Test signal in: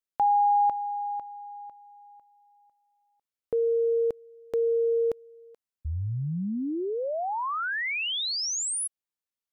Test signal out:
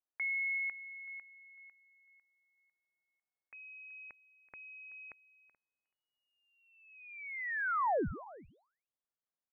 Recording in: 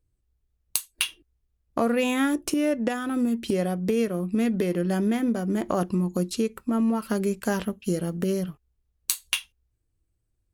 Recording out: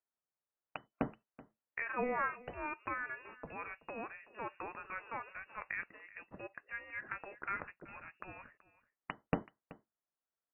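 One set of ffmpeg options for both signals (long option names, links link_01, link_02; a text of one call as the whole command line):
ffmpeg -i in.wav -filter_complex "[0:a]highpass=980,aderivative,acompressor=threshold=-34dB:ratio=6:attack=87:release=138:knee=6:detection=peak,asoftclip=type=hard:threshold=-17dB,asplit=2[link_01][link_02];[link_02]adelay=379,volume=-18dB,highshelf=frequency=4000:gain=-8.53[link_03];[link_01][link_03]amix=inputs=2:normalize=0,lowpass=frequency=2600:width_type=q:width=0.5098,lowpass=frequency=2600:width_type=q:width=0.6013,lowpass=frequency=2600:width_type=q:width=0.9,lowpass=frequency=2600:width_type=q:width=2.563,afreqshift=-3000,volume=10dB" out.wav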